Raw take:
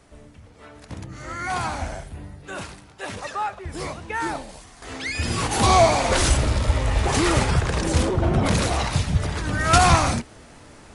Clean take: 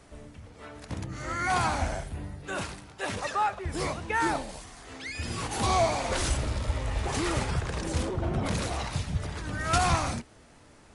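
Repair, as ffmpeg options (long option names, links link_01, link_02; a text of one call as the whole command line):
ffmpeg -i in.wav -af "asetnsamples=nb_out_samples=441:pad=0,asendcmd='4.82 volume volume -9dB',volume=0dB" out.wav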